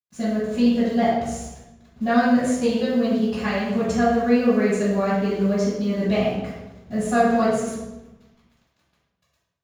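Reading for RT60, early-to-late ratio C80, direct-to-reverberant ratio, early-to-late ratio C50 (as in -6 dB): 1.1 s, 2.0 dB, -14.0 dB, -0.5 dB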